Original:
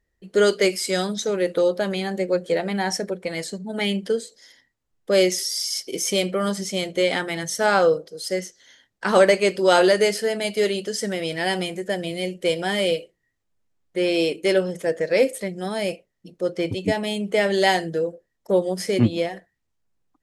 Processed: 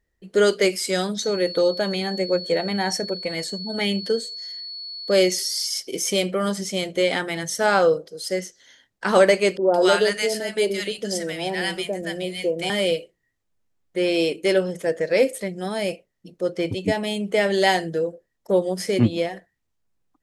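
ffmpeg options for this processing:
-filter_complex "[0:a]asettb=1/sr,asplit=3[s0][s1][s2];[s0]atrim=end=1.194[s3];[s1]atrim=start=1.19:end=5.67,asetpts=PTS-STARTPTS,afade=t=in:d=0.004:c=qsin,afade=t=out:st=4.476:d=0.004:c=qsin,aeval=exprs='val(0)+0.0251*sin(2*PI*4400*n/s)':c=same[s4];[s2]atrim=start=5.666[s5];[s3][s4]acrossfade=d=0.004:c1=hsin:c2=qsin[s6];[s6][s5]acrossfade=d=0.004:c1=qsin:c2=hsin,asettb=1/sr,asplit=3[s7][s8][s9];[s7]atrim=end=9.574[s10];[s8]atrim=start=9.57:end=12.7,asetpts=PTS-STARTPTS,afade=t=in:d=0.004:c=qsin,afade=t=out:st=3.126:d=0.004:c=qsin,acrossover=split=160|860[s11][s12][s13];[s11]adelay=110[s14];[s13]adelay=170[s15];[s14][s12][s15]amix=inputs=3:normalize=0,atrim=end_sample=138033[s16];[s9]atrim=start=12.696[s17];[s10][s16]acrossfade=d=0.004:c1=hsin:c2=qsin[s18];[s18][s17]acrossfade=d=0.004:c1=qsin:c2=hsin"

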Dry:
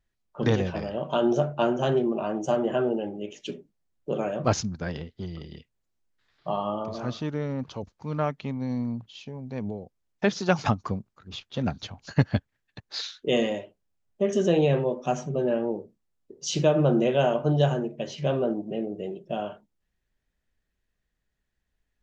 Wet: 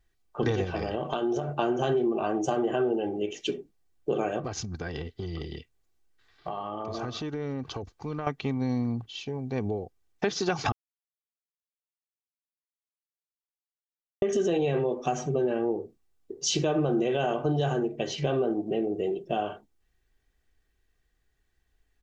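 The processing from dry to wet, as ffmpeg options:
-filter_complex "[0:a]asettb=1/sr,asplit=3[s0][s1][s2];[s0]atrim=end=0.644[s3];[s1]atrim=start=0.64:end=1.49,asetpts=PTS-STARTPTS,afade=t=in:d=0.004:c=qsin,afade=t=out:st=0.846:d=0.004:c=qsin,acompressor=threshold=0.0398:ratio=6:attack=3.2:release=140:knee=1:detection=peak[s4];[s2]atrim=start=1.486[s5];[s3][s4]acrossfade=d=0.004:c1=hsin:c2=qsin[s6];[s6][s5]acrossfade=d=0.004:c1=qsin:c2=hsin,asettb=1/sr,asplit=3[s7][s8][s9];[s7]atrim=end=4.394[s10];[s8]atrim=start=4.39:end=8.27,asetpts=PTS-STARTPTS,afade=t=in:d=0.004:c=qsin,afade=t=out:st=3.876:d=0.004:c=qsin,acompressor=threshold=0.0224:ratio=16:attack=3.2:release=140:knee=1:detection=peak[s11];[s9]atrim=start=8.266[s12];[s10][s11]acrossfade=d=0.004:c1=hsin:c2=qsin[s13];[s13][s12]acrossfade=d=0.004:c1=qsin:c2=hsin,asplit=3[s14][s15][s16];[s14]atrim=end=10.72,asetpts=PTS-STARTPTS,afade=t=out:st=10.716:d=0.004:c=hsin[s17];[s15]atrim=start=10.72:end=14.22,asetpts=PTS-STARTPTS,volume=0[s18];[s16]atrim=start=14.22,asetpts=PTS-STARTPTS,afade=t=in:d=0.004:c=hsin[s19];[s17][s18][s19]concat=n=3:v=0:a=1,aecho=1:1:2.6:0.48,alimiter=limit=0.158:level=0:latency=1:release=35,acompressor=threshold=0.0355:ratio=3,volume=1.68"

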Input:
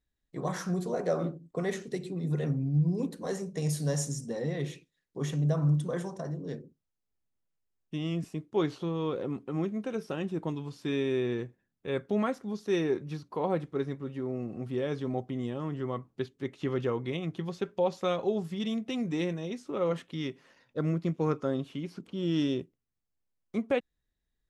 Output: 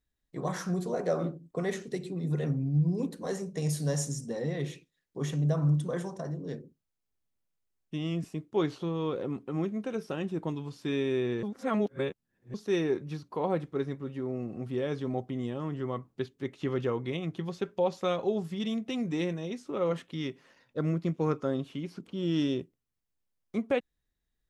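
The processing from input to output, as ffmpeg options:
-filter_complex "[0:a]asplit=3[s0][s1][s2];[s0]atrim=end=11.432[s3];[s1]atrim=start=11.428:end=12.542,asetpts=PTS-STARTPTS,areverse[s4];[s2]atrim=start=12.538[s5];[s3][s4]acrossfade=d=0.004:c1=hsin:c2=hsin[s6];[s6][s5]acrossfade=d=0.004:c1=hsin:c2=hsin"

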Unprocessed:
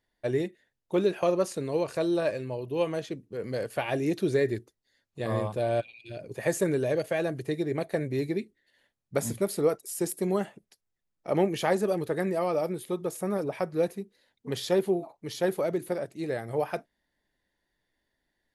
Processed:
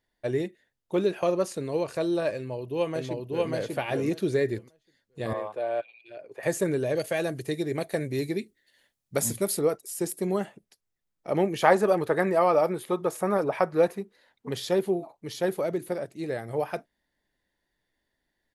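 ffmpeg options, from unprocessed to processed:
-filter_complex "[0:a]asplit=2[s0][s1];[s1]afade=t=in:st=2.36:d=0.01,afade=t=out:st=3.5:d=0.01,aecho=0:1:590|1180|1770:0.944061|0.141609|0.0212414[s2];[s0][s2]amix=inputs=2:normalize=0,asettb=1/sr,asplit=3[s3][s4][s5];[s3]atrim=end=5.334[s6];[s4]atrim=start=5.33:end=6.43,asetpts=PTS-STARTPTS,afade=t=in:d=0.004:c=qsin,afade=t=out:st=1.096:d=0.004:c=qsin,acrossover=split=380 2700:gain=0.0708 1 0.2[s7][s8][s9];[s7][s8][s9]amix=inputs=3:normalize=0[s10];[s5]atrim=start=6.426[s11];[s6][s10]acrossfade=d=0.004:c1=hsin:c2=qsin[s12];[s12][s11]acrossfade=d=0.004:c1=qsin:c2=hsin,asettb=1/sr,asplit=3[s13][s14][s15];[s13]atrim=end=6.954[s16];[s14]atrim=start=6.95:end=9.59,asetpts=PTS-STARTPTS,afade=t=in:d=0.004:c=qsin,afade=t=out:st=2.636:d=0.004:c=qsin,highshelf=f=3700:g=9[s17];[s15]atrim=start=9.586[s18];[s16][s17]acrossfade=d=0.004:c1=hsin:c2=qsin[s19];[s19][s18]acrossfade=d=0.004:c1=qsin:c2=hsin,asettb=1/sr,asplit=3[s20][s21][s22];[s20]atrim=end=11.624[s23];[s21]atrim=start=11.62:end=14.49,asetpts=PTS-STARTPTS,afade=t=in:d=0.004:c=qsin,afade=t=out:st=2.866:d=0.004:c=qsin,equalizer=f=1100:w=0.59:g=10[s24];[s22]atrim=start=14.486[s25];[s23][s24]acrossfade=d=0.004:c1=hsin:c2=qsin[s26];[s26][s25]acrossfade=d=0.004:c1=qsin:c2=hsin"

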